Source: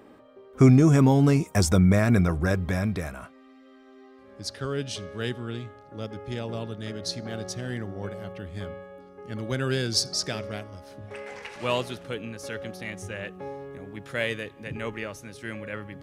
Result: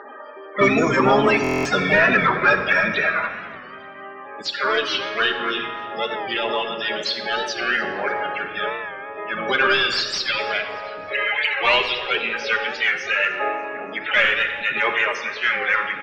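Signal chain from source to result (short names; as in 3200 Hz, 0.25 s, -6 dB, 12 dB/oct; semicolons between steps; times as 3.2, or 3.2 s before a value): HPF 1500 Hz 6 dB/oct; low-pass opened by the level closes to 2600 Hz, open at -30.5 dBFS; high shelf 2600 Hz +11.5 dB; compressor 1.5:1, threshold -34 dBFS, peak gain reduction 8.5 dB; harmoniser -4 st -6 dB, +7 st -6 dB; loudest bins only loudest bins 32; overdrive pedal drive 21 dB, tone 3100 Hz, clips at -11.5 dBFS; air absorption 220 m; on a send: feedback echo 0.292 s, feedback 41%, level -21 dB; on the sum: shoebox room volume 2400 m³, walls mixed, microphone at 1.3 m; stuck buffer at 1.42, samples 1024, times 9; record warp 45 rpm, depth 100 cents; gain +8 dB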